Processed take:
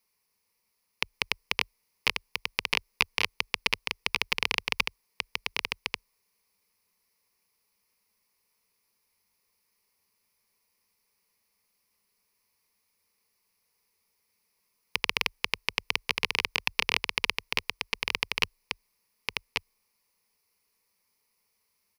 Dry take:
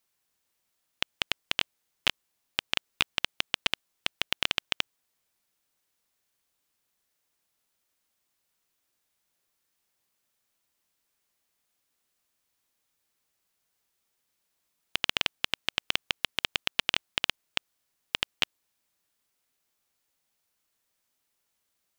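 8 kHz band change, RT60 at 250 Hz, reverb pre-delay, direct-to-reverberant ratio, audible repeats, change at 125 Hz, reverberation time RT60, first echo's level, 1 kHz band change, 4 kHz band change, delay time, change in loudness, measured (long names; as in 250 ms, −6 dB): +1.5 dB, no reverb audible, no reverb audible, no reverb audible, 1, +2.0 dB, no reverb audible, −3.5 dB, +3.5 dB, −1.0 dB, 1,138 ms, +0.5 dB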